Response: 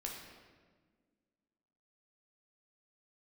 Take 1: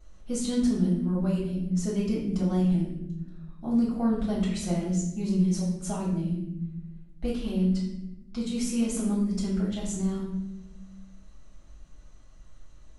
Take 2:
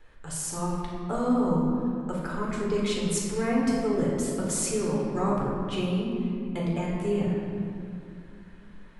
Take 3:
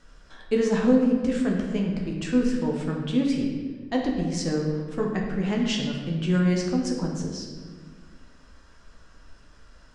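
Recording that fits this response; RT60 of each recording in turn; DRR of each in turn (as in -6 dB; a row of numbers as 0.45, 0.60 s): 3; 0.90, 2.5, 1.6 s; -6.5, -4.5, -1.0 dB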